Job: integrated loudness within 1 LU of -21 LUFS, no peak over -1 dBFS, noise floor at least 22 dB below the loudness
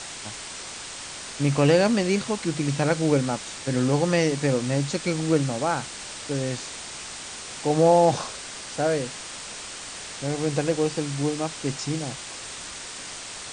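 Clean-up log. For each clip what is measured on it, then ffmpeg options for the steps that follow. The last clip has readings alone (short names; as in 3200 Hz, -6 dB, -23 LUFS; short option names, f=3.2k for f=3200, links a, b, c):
noise floor -38 dBFS; noise floor target -48 dBFS; loudness -25.5 LUFS; peak -7.5 dBFS; loudness target -21.0 LUFS
-> -af "afftdn=nr=10:nf=-38"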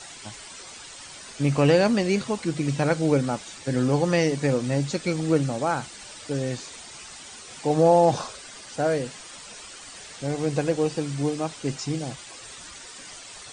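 noise floor -43 dBFS; noise floor target -47 dBFS
-> -af "afftdn=nr=6:nf=-43"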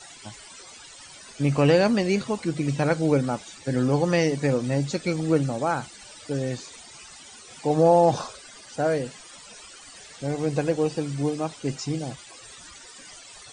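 noise floor -46 dBFS; noise floor target -47 dBFS
-> -af "afftdn=nr=6:nf=-46"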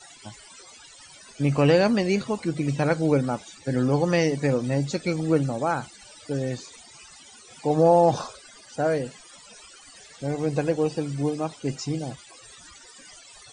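noise floor -49 dBFS; loudness -24.5 LUFS; peak -7.5 dBFS; loudness target -21.0 LUFS
-> -af "volume=3.5dB"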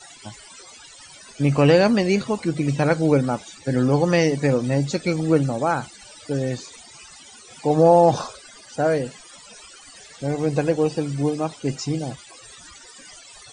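loudness -21.0 LUFS; peak -4.0 dBFS; noise floor -46 dBFS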